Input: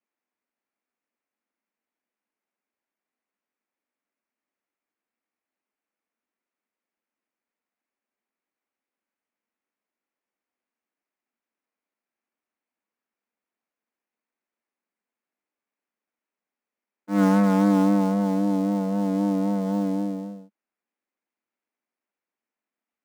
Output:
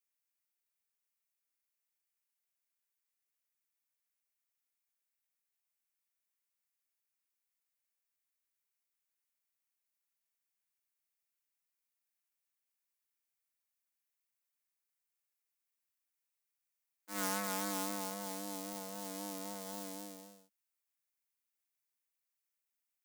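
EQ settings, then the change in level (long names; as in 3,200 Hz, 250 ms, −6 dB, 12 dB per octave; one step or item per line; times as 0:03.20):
first difference
+4.5 dB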